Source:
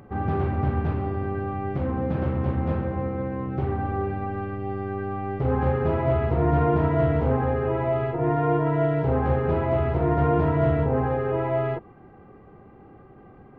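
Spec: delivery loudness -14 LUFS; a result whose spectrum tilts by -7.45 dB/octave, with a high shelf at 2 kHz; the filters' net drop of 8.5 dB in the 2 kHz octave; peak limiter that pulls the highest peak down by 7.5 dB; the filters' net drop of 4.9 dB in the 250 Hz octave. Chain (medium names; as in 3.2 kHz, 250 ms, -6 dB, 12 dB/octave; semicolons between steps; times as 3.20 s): peaking EQ 250 Hz -7.5 dB; treble shelf 2 kHz -8.5 dB; peaking EQ 2 kHz -6.5 dB; trim +15.5 dB; peak limiter -4 dBFS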